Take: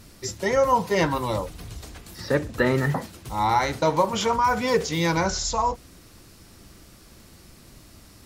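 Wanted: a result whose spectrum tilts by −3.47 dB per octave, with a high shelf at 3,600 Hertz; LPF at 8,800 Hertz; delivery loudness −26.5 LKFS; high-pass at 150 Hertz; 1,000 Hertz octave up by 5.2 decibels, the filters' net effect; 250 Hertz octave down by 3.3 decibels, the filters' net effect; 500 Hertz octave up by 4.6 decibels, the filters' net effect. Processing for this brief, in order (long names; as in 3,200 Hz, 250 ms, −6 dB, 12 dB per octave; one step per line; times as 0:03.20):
high-pass filter 150 Hz
low-pass filter 8,800 Hz
parametric band 250 Hz −6 dB
parametric band 500 Hz +5.5 dB
parametric band 1,000 Hz +5 dB
high-shelf EQ 3,600 Hz −6 dB
level −6.5 dB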